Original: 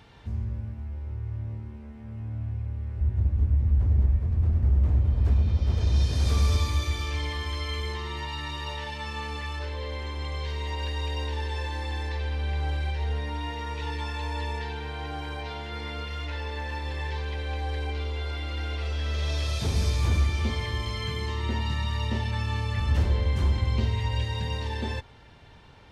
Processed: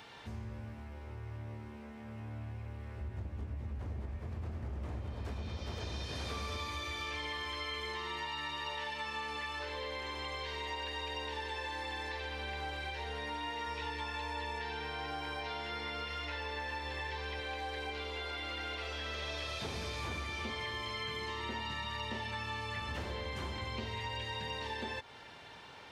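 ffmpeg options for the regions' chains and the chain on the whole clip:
ffmpeg -i in.wav -filter_complex "[0:a]asettb=1/sr,asplit=3[link_01][link_02][link_03];[link_01]atrim=end=13.674[link_04];[link_02]atrim=start=13.67:end=17.4,asetpts=PTS-STARTPTS,afade=type=in:duration=0.004:curve=qsin,afade=type=out:start_time=3.726:duration=0.004:curve=qsin,lowshelf=frequency=110:gain=7.5,aeval=exprs='val(0)+0.00178*sin(2*PI*5400*n/s)':channel_layout=same[link_05];[link_03]atrim=start=17.396[link_06];[link_04][link_05]acrossfade=duration=0.004:curve1=hsin:curve2=qsin[link_07];[link_07][link_06]acrossfade=duration=0.004:curve1=qsin:curve2=hsin,acrossover=split=3700[link_08][link_09];[link_09]acompressor=threshold=-50dB:ratio=4:attack=1:release=60[link_10];[link_08][link_10]amix=inputs=2:normalize=0,highpass=frequency=570:poles=1,acompressor=threshold=-43dB:ratio=3,volume=4.5dB" out.wav

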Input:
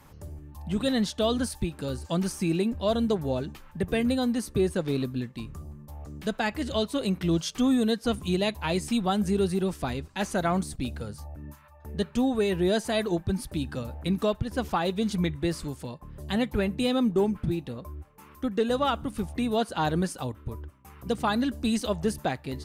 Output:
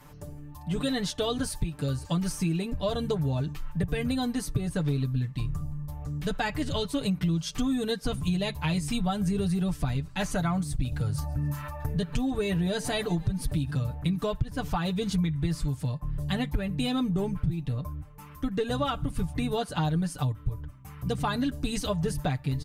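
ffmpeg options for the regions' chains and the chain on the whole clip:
ffmpeg -i in.wav -filter_complex "[0:a]asettb=1/sr,asplit=3[link_01][link_02][link_03];[link_01]atrim=end=10.924[link_04];[link_02]atrim=start=10.92:end=13.71,asetpts=PTS-STARTPTS,afade=type=in:duration=0.004:curve=qsin,afade=type=out:start_time=2.786:duration=0.004:curve=qsin,acompressor=mode=upward:threshold=-27dB:ratio=2.5:attack=3.2:release=140:knee=2.83:detection=peak,asplit=5[link_05][link_06][link_07][link_08][link_09];[link_06]adelay=137,afreqshift=74,volume=-22.5dB[link_10];[link_07]adelay=274,afreqshift=148,volume=-27.5dB[link_11];[link_08]adelay=411,afreqshift=222,volume=-32.6dB[link_12];[link_09]adelay=548,afreqshift=296,volume=-37.6dB[link_13];[link_05][link_10][link_11][link_12][link_13]amix=inputs=5:normalize=0,atrim=end_sample=123039[link_14];[link_03]atrim=start=13.706[link_15];[link_04][link_14]acrossfade=duration=0.004:curve1=hsin:curve2=qsin[link_16];[link_16][link_15]acrossfade=duration=0.004:curve1=qsin:curve2=hsin,aecho=1:1:6.8:0.74,asubboost=boost=5.5:cutoff=140,acompressor=threshold=-24dB:ratio=6" out.wav

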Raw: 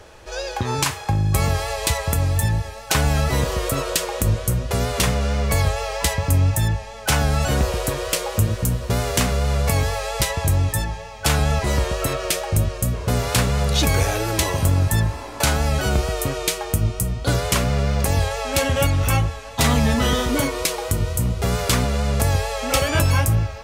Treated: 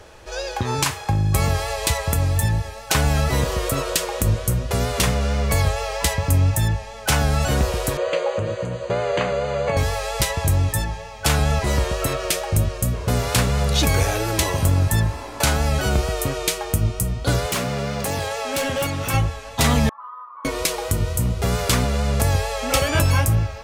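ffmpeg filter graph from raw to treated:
ffmpeg -i in.wav -filter_complex "[0:a]asettb=1/sr,asplit=3[link_01][link_02][link_03];[link_01]atrim=end=7.974[link_04];[link_02]atrim=start=7.97:end=9.77,asetpts=PTS-STARTPTS,afade=type=in:duration=0.004:curve=qsin,afade=type=out:start_time=1.796:duration=0.004:curve=qsin,acrossover=split=3600[link_05][link_06];[link_06]acompressor=threshold=-39dB:ratio=4:attack=1:release=60[link_07];[link_05][link_07]amix=inputs=2:normalize=0,asuperstop=centerf=5400:order=12:qfactor=5.2,highpass=170,equalizer=frequency=240:width_type=q:width=4:gain=-10,equalizer=frequency=550:width_type=q:width=4:gain=10,equalizer=frequency=3700:width_type=q:width=4:gain=-4,lowpass=frequency=6900:width=0.5412,lowpass=frequency=6900:width=1.3066[link_08];[link_03]atrim=start=9.766[link_09];[link_04][link_08]acrossfade=duration=0.004:curve1=hsin:curve2=qsin[link_10];[link_10][link_09]acrossfade=duration=0.004:curve1=qsin:curve2=hsin,asettb=1/sr,asplit=3[link_11][link_12][link_13];[link_11]atrim=end=17.464[link_14];[link_12]atrim=start=17.46:end=19.14,asetpts=PTS-STARTPTS,afade=type=in:duration=0.004:curve=qsin,afade=type=out:start_time=1.676:duration=0.004:curve=qsin,highpass=150,volume=19dB,asoftclip=hard,volume=-19dB[link_15];[link_13]atrim=start=19.136[link_16];[link_14][link_15]acrossfade=duration=0.004:curve1=hsin:curve2=qsin[link_17];[link_17][link_16]acrossfade=duration=0.004:curve1=qsin:curve2=hsin,asettb=1/sr,asplit=3[link_18][link_19][link_20];[link_18]atrim=end=19.894[link_21];[link_19]atrim=start=19.89:end=20.45,asetpts=PTS-STARTPTS,afade=type=in:duration=0.004:curve=qsin,afade=type=out:start_time=0.556:duration=0.004:curve=qsin,asuperpass=centerf=1100:order=4:qfactor=6.6,aecho=1:1:5.8:0.54,atrim=end_sample=24696[link_22];[link_20]atrim=start=20.446[link_23];[link_21][link_22]acrossfade=duration=0.004:curve1=hsin:curve2=qsin[link_24];[link_24][link_23]acrossfade=duration=0.004:curve1=qsin:curve2=hsin" out.wav

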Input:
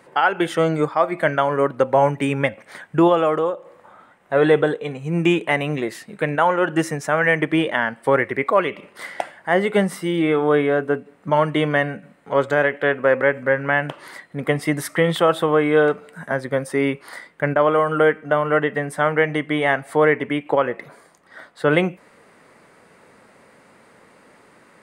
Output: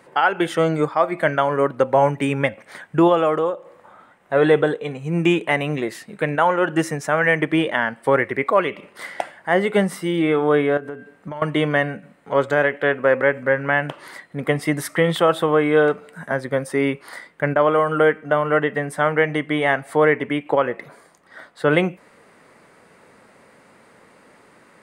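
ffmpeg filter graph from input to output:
ffmpeg -i in.wav -filter_complex "[0:a]asettb=1/sr,asplit=3[link_01][link_02][link_03];[link_01]atrim=end=10.774[link_04];[link_02]atrim=start=10.77:end=11.42,asetpts=PTS-STARTPTS,afade=type=in:duration=0.004:curve=qsin,afade=type=out:start_time=0.646:duration=0.004:curve=qsin,bandreject=frequency=226:width_type=h:width=4,bandreject=frequency=452:width_type=h:width=4,bandreject=frequency=678:width_type=h:width=4,bandreject=frequency=904:width_type=h:width=4,bandreject=frequency=1130:width_type=h:width=4,bandreject=frequency=1356:width_type=h:width=4,bandreject=frequency=1582:width_type=h:width=4,bandreject=frequency=1808:width_type=h:width=4,bandreject=frequency=2034:width_type=h:width=4,bandreject=frequency=2260:width_type=h:width=4,bandreject=frequency=2486:width_type=h:width=4,bandreject=frequency=2712:width_type=h:width=4,bandreject=frequency=2938:width_type=h:width=4,bandreject=frequency=3164:width_type=h:width=4,bandreject=frequency=3390:width_type=h:width=4,bandreject=frequency=3616:width_type=h:width=4,bandreject=frequency=3842:width_type=h:width=4,bandreject=frequency=4068:width_type=h:width=4,bandreject=frequency=4294:width_type=h:width=4,bandreject=frequency=4520:width_type=h:width=4,bandreject=frequency=4746:width_type=h:width=4,bandreject=frequency=4972:width_type=h:width=4,bandreject=frequency=5198:width_type=h:width=4,bandreject=frequency=5424:width_type=h:width=4,bandreject=frequency=5650:width_type=h:width=4,bandreject=frequency=5876:width_type=h:width=4,bandreject=frequency=6102:width_type=h:width=4,acompressor=threshold=-27dB:ratio=10:attack=3.2:release=140:knee=1:detection=peak[link_05];[link_03]atrim=start=11.416[link_06];[link_04][link_05]acrossfade=duration=0.004:curve1=hsin:curve2=qsin[link_07];[link_07][link_06]acrossfade=duration=0.004:curve1=qsin:curve2=hsin" out.wav

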